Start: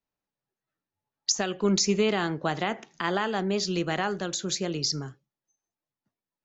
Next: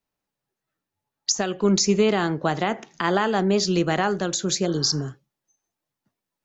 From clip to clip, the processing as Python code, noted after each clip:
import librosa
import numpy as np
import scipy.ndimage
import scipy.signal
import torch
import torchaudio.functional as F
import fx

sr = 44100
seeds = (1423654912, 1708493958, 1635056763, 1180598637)

y = fx.dynamic_eq(x, sr, hz=2800.0, q=0.78, threshold_db=-41.0, ratio=4.0, max_db=-4)
y = fx.rider(y, sr, range_db=10, speed_s=2.0)
y = fx.spec_repair(y, sr, seeds[0], start_s=4.69, length_s=0.35, low_hz=730.0, high_hz=3000.0, source='after')
y = y * 10.0 ** (5.5 / 20.0)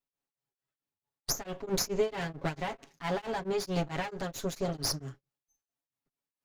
y = fx.lower_of_two(x, sr, delay_ms=7.2)
y = y * np.abs(np.cos(np.pi * 4.5 * np.arange(len(y)) / sr))
y = y * 10.0 ** (-6.5 / 20.0)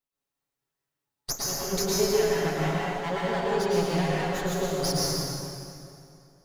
y = fx.rev_plate(x, sr, seeds[1], rt60_s=2.6, hf_ratio=0.8, predelay_ms=95, drr_db=-6.0)